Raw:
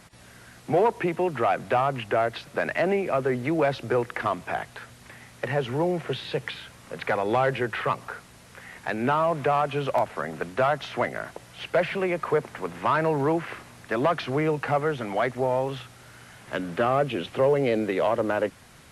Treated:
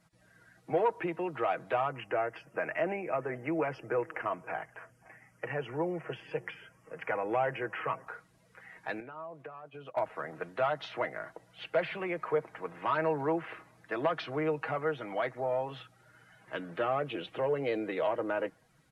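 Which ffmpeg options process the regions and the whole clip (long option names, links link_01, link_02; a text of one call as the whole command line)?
ffmpeg -i in.wav -filter_complex "[0:a]asettb=1/sr,asplit=3[link_01][link_02][link_03];[link_01]atrim=end=1.914[link_04];[link_02]atrim=start=1.91:end=8.07,asetpts=PTS-STARTPTS,afade=type=in:duration=0.004:curve=qsin,afade=type=out:start_time=6.156:duration=0.004:curve=qsin,asuperstop=centerf=3900:order=4:qfactor=1.9,aecho=1:1:526:0.0631,atrim=end_sample=271656[link_05];[link_03]atrim=start=8.066[link_06];[link_04][link_05]acrossfade=duration=0.004:curve1=hsin:curve2=qsin[link_07];[link_07][link_06]acrossfade=duration=0.004:curve1=qsin:curve2=hsin,asettb=1/sr,asplit=3[link_08][link_09][link_10];[link_08]atrim=end=9.004[link_11];[link_09]atrim=start=9:end=9.97,asetpts=PTS-STARTPTS,afade=type=in:duration=0.004:curve=qsin,afade=type=out:start_time=0.966:duration=0.004:curve=qsin,agate=range=-33dB:threshold=-26dB:ratio=3:release=100:detection=peak,acompressor=threshold=-33dB:ratio=10:attack=3.2:release=140:knee=1:detection=peak[link_12];[link_10]atrim=start=9.966[link_13];[link_11][link_12]acrossfade=duration=0.004:curve1=hsin:curve2=qsin[link_14];[link_14][link_13]acrossfade=duration=0.004:curve1=qsin:curve2=hsin,afftdn=noise_reduction=14:noise_floor=-47,bass=frequency=250:gain=-7,treble=frequency=4000:gain=2,aecho=1:1:6.3:0.5,volume=-8dB" out.wav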